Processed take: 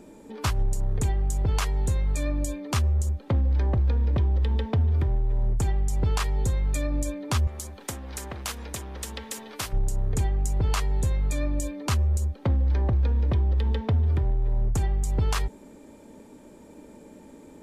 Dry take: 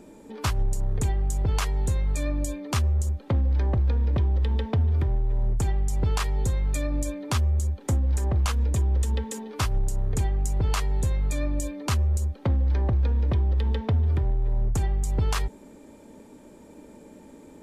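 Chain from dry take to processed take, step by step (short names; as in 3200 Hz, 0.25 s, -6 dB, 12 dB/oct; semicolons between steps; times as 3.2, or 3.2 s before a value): 7.47–9.73 spectral compressor 2:1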